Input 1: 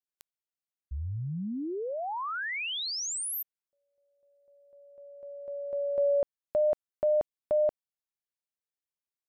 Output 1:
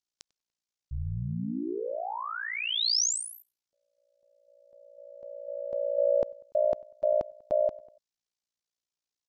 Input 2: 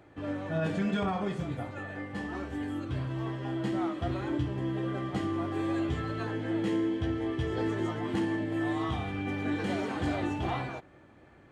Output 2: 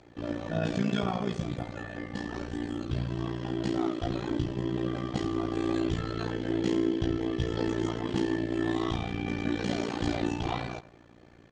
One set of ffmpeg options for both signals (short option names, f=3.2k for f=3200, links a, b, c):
-filter_complex "[0:a]lowpass=f=5.9k:w=0.5412,lowpass=f=5.9k:w=1.3066,equalizer=f=1.9k:t=o:w=2.4:g=-6.5,asplit=2[a][b];[b]adelay=97,lowpass=f=3.4k:p=1,volume=-19dB,asplit=2[c][d];[d]adelay=97,lowpass=f=3.4k:p=1,volume=0.41,asplit=2[e][f];[f]adelay=97,lowpass=f=3.4k:p=1,volume=0.41[g];[c][e][g]amix=inputs=3:normalize=0[h];[a][h]amix=inputs=2:normalize=0,tremolo=f=58:d=0.919,crystalizer=i=4:c=0,volume=5.5dB"